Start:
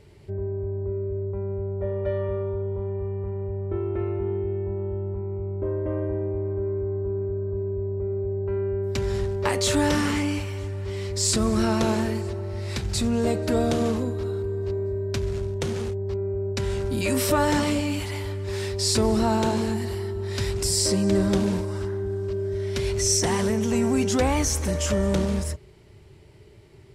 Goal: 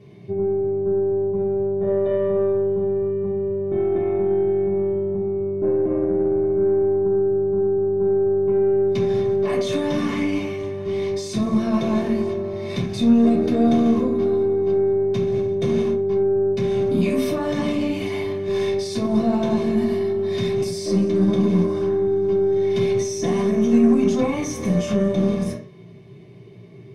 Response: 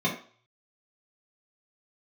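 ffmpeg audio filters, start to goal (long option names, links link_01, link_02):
-filter_complex "[0:a]alimiter=limit=-20.5dB:level=0:latency=1:release=25[link_01];[1:a]atrim=start_sample=2205[link_02];[link_01][link_02]afir=irnorm=-1:irlink=0,aeval=exprs='1.19*(cos(1*acos(clip(val(0)/1.19,-1,1)))-cos(1*PI/2))+0.0266*(cos(8*acos(clip(val(0)/1.19,-1,1)))-cos(8*PI/2))':channel_layout=same,volume=-7dB"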